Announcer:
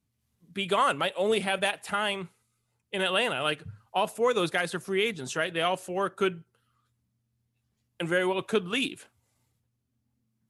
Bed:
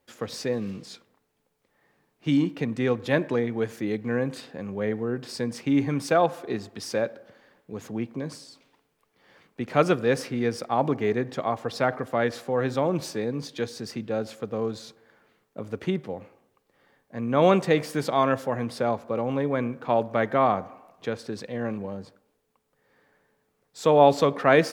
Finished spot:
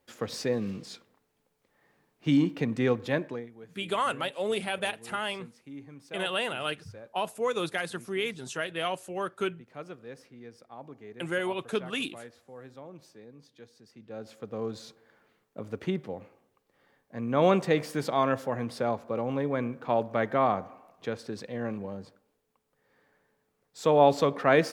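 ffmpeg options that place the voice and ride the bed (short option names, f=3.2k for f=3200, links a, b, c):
-filter_complex "[0:a]adelay=3200,volume=-4dB[a];[1:a]volume=17dB,afade=t=out:st=2.88:d=0.62:silence=0.0944061,afade=t=in:st=13.93:d=0.91:silence=0.125893[b];[a][b]amix=inputs=2:normalize=0"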